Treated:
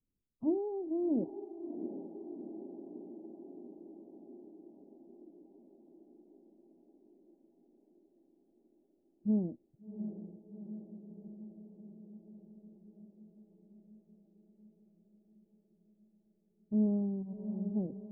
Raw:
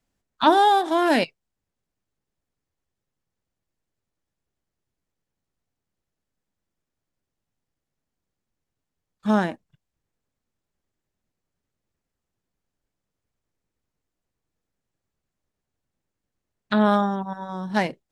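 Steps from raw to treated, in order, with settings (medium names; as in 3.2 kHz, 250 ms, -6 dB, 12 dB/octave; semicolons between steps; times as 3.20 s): inverse Chebyshev low-pass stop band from 1.4 kHz, stop band 60 dB; on a send: echo that smears into a reverb 722 ms, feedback 70%, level -9.5 dB; on the sum: trim -8 dB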